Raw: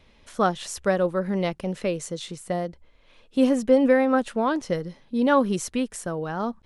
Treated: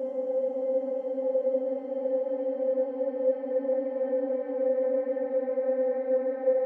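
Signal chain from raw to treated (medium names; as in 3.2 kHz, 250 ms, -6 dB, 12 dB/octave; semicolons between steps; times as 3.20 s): band-pass sweep 1.2 kHz -> 430 Hz, 2.11–4.58 s; Paulstretch 25×, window 0.50 s, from 3.67 s; trim -6.5 dB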